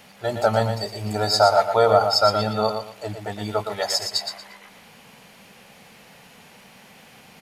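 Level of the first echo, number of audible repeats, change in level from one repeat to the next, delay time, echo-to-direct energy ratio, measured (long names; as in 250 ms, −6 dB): −7.0 dB, 3, −12.0 dB, 117 ms, −6.5 dB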